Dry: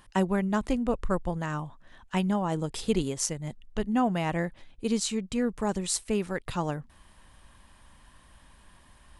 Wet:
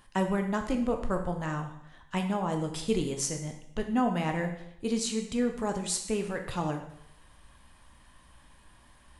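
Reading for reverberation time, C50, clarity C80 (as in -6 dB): 0.75 s, 8.0 dB, 10.5 dB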